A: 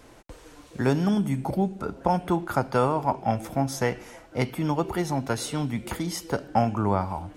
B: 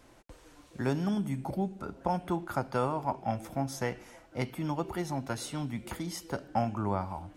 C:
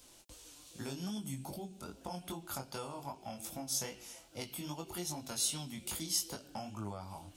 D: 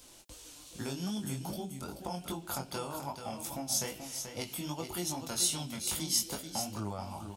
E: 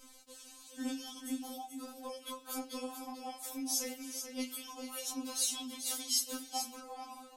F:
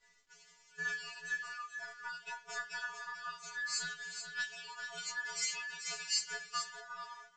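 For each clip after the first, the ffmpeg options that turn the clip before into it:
-af "bandreject=f=450:w=12,volume=0.447"
-af "acompressor=threshold=0.0251:ratio=6,flanger=delay=18.5:depth=4.3:speed=2.5,aexciter=amount=4.2:drive=6.9:freq=2700,volume=0.631"
-af "aecho=1:1:434:0.398,volume=1.58"
-af "afftfilt=real='re*3.46*eq(mod(b,12),0)':imag='im*3.46*eq(mod(b,12),0)':win_size=2048:overlap=0.75"
-af "afftfilt=real='real(if(between(b,1,1012),(2*floor((b-1)/92)+1)*92-b,b),0)':imag='imag(if(between(b,1,1012),(2*floor((b-1)/92)+1)*92-b,b),0)*if(between(b,1,1012),-1,1)':win_size=2048:overlap=0.75,agate=range=0.0224:threshold=0.00447:ratio=3:detection=peak" -ar 16000 -c:a pcm_mulaw

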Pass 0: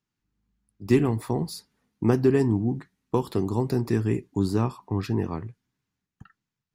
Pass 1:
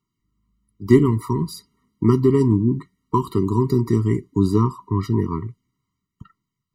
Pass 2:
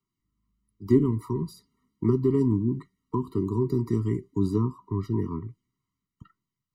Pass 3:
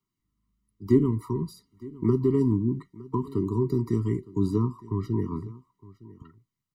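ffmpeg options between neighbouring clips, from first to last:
-af "equalizer=f=980:w=3.4:g=6.5,aphaser=in_gain=1:out_gain=1:delay=1:decay=0.23:speed=1.1:type=triangular,afftfilt=real='re*eq(mod(floor(b*sr/1024/460),2),0)':imag='im*eq(mod(floor(b*sr/1024/460),2),0)':win_size=1024:overlap=0.75,volume=1.68"
-filter_complex "[0:a]acrossover=split=210|830[s0][s1][s2];[s2]acompressor=threshold=0.00891:ratio=6[s3];[s0][s1][s3]amix=inputs=3:normalize=0,flanger=delay=2.5:depth=1.5:regen=85:speed=1.4:shape=sinusoidal,volume=0.794"
-af "aecho=1:1:912:0.0944"

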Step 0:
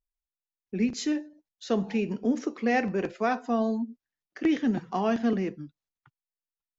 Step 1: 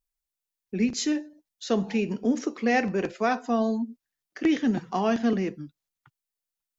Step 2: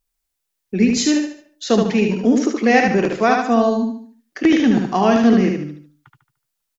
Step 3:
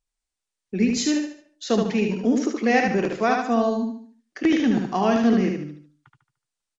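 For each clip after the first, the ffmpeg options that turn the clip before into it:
-af "highshelf=f=4400:g=6.5,volume=1.19"
-af "aecho=1:1:74|148|222|296|370:0.631|0.246|0.096|0.0374|0.0146,volume=2.66"
-af "volume=0.562" -ar 22050 -c:a libmp3lame -b:a 96k

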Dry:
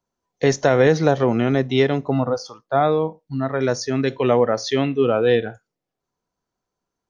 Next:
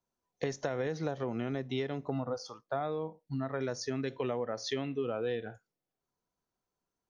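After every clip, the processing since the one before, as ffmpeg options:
-af "acompressor=threshold=0.0631:ratio=6,volume=0.447"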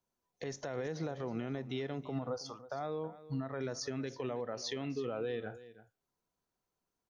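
-af "alimiter=level_in=1.78:limit=0.0631:level=0:latency=1:release=85,volume=0.562,aecho=1:1:323:0.158"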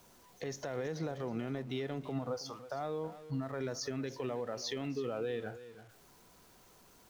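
-af "aeval=exprs='val(0)+0.5*0.00188*sgn(val(0))':c=same"

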